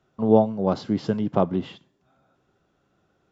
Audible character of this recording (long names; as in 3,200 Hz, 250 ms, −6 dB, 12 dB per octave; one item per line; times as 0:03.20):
background noise floor −70 dBFS
spectral slope −3.0 dB per octave